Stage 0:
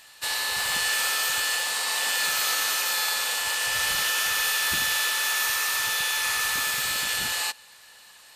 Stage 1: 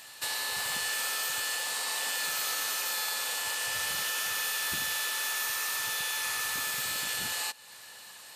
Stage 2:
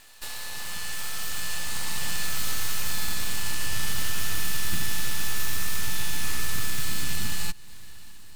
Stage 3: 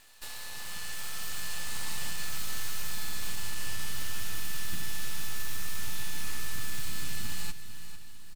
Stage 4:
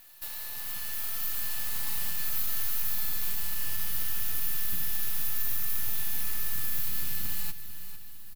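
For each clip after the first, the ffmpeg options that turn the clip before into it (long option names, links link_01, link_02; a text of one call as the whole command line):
ffmpeg -i in.wav -af "highpass=83,equalizer=frequency=2300:width=0.36:gain=-3.5,acompressor=threshold=-41dB:ratio=2,volume=4.5dB" out.wav
ffmpeg -i in.wav -af "dynaudnorm=framelen=540:gausssize=5:maxgain=5dB,aeval=exprs='max(val(0),0)':channel_layout=same,asubboost=boost=8.5:cutoff=200" out.wav
ffmpeg -i in.wav -af "alimiter=limit=-15dB:level=0:latency=1,aecho=1:1:449|898|1347|1796:0.251|0.0879|0.0308|0.0108,volume=-5.5dB" out.wav
ffmpeg -i in.wav -af "aexciter=amount=6.5:drive=2.8:freq=11000,volume=-2dB" out.wav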